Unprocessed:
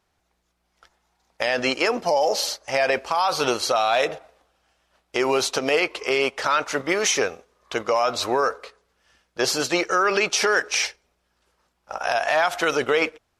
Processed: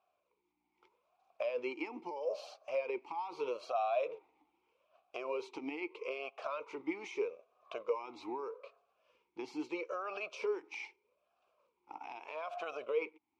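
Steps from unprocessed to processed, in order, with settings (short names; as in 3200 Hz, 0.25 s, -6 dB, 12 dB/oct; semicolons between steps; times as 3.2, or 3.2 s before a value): compressor 2:1, threshold -39 dBFS, peak gain reduction 12.5 dB; vowel sweep a-u 0.79 Hz; gain +4 dB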